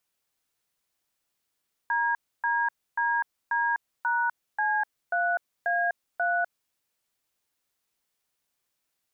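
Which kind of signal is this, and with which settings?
touch tones "DDDD#C3A3", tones 250 ms, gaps 287 ms, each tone −25.5 dBFS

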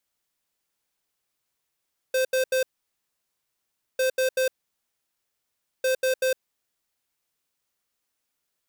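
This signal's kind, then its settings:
beeps in groups square 519 Hz, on 0.11 s, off 0.08 s, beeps 3, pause 1.36 s, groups 3, −22.5 dBFS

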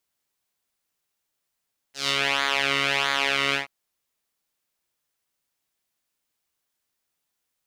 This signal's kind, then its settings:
subtractive patch with pulse-width modulation C#3, filter bandpass, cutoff 2,000 Hz, Q 1.8, filter envelope 1.5 octaves, filter sustain 25%, attack 145 ms, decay 0.07 s, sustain −2 dB, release 0.13 s, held 1.60 s, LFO 1.5 Hz, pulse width 11%, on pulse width 6%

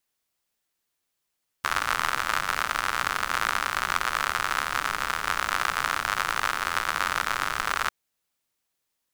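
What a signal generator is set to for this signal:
rain-like ticks over hiss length 6.25 s, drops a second 93, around 1,300 Hz, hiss −14.5 dB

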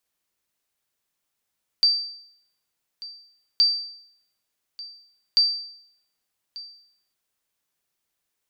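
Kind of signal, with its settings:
ping with an echo 4,660 Hz, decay 0.68 s, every 1.77 s, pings 3, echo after 1.19 s, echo −19.5 dB −11.5 dBFS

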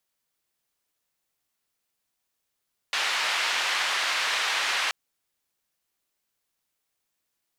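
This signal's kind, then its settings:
band-limited noise 1,000–3,100 Hz, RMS −26.5 dBFS 1.98 s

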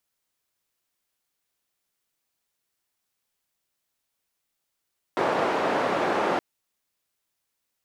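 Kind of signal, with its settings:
band-limited noise 300–880 Hz, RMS −24.5 dBFS 1.22 s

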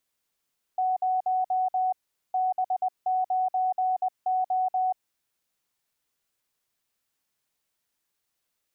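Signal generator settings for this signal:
Morse code "0 B9O" 20 words per minute 744 Hz −22 dBFS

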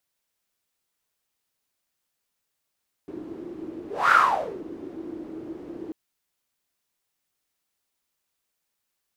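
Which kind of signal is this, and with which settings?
pass-by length 2.84 s, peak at 0:01.03, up 0.25 s, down 0.55 s, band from 330 Hz, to 1,400 Hz, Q 9.6, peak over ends 19 dB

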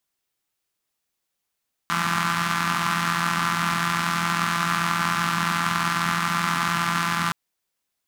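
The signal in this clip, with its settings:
pulse-train model of a four-cylinder engine, steady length 5.42 s, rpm 5,100, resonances 190/1,200 Hz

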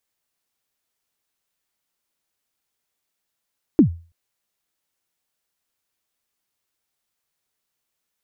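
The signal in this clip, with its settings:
synth kick length 0.33 s, from 350 Hz, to 84 Hz, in 101 ms, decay 0.35 s, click off, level −5 dB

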